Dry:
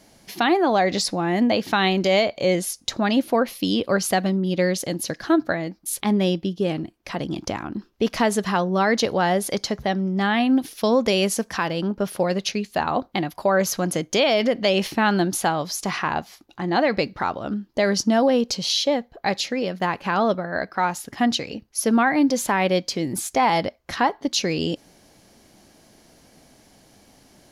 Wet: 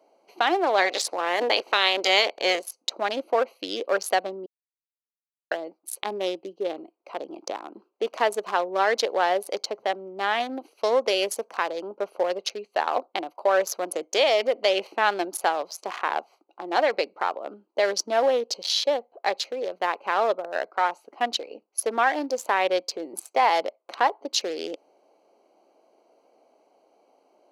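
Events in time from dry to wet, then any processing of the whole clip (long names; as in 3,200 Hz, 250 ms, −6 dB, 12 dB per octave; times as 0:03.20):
0:00.77–0:02.61: ceiling on every frequency bin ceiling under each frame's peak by 16 dB
0:04.46–0:05.51: silence
whole clip: adaptive Wiener filter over 25 samples; high-pass filter 420 Hz 24 dB per octave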